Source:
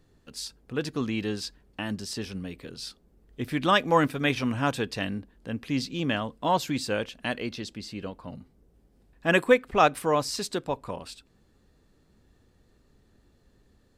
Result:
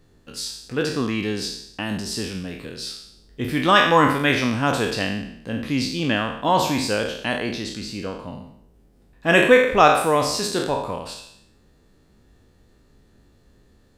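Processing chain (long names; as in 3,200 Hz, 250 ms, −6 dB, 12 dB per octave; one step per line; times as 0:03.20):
peak hold with a decay on every bin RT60 0.72 s
level +4 dB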